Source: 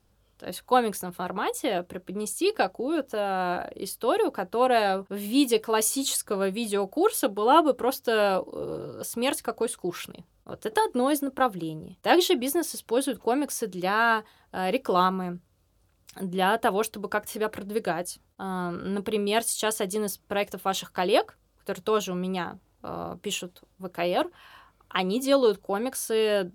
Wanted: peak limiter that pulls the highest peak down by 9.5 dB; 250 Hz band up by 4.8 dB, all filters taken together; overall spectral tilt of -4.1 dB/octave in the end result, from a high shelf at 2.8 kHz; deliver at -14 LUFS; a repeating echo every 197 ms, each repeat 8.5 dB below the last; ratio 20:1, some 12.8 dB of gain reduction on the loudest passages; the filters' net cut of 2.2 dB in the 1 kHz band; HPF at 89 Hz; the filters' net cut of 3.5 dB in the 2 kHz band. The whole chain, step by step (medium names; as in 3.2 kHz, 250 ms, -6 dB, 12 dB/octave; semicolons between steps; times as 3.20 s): high-pass 89 Hz; peaking EQ 250 Hz +6.5 dB; peaking EQ 1 kHz -3 dB; peaking EQ 2 kHz -7 dB; treble shelf 2.8 kHz +7.5 dB; compression 20:1, threshold -25 dBFS; peak limiter -21.5 dBFS; feedback delay 197 ms, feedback 38%, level -8.5 dB; trim +18 dB